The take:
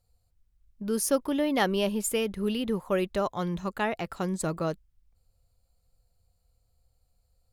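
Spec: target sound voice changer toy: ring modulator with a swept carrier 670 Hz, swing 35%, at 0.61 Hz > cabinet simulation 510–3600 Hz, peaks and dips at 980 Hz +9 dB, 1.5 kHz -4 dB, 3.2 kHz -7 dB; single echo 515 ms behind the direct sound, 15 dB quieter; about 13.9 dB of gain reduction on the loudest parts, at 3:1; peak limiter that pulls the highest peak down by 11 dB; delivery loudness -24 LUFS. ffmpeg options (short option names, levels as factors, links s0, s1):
-af "acompressor=threshold=0.0112:ratio=3,alimiter=level_in=4.47:limit=0.0631:level=0:latency=1,volume=0.224,aecho=1:1:515:0.178,aeval=exprs='val(0)*sin(2*PI*670*n/s+670*0.35/0.61*sin(2*PI*0.61*n/s))':c=same,highpass=510,equalizer=f=980:t=q:w=4:g=9,equalizer=f=1500:t=q:w=4:g=-4,equalizer=f=3200:t=q:w=4:g=-7,lowpass=f=3600:w=0.5412,lowpass=f=3600:w=1.3066,volume=14.1"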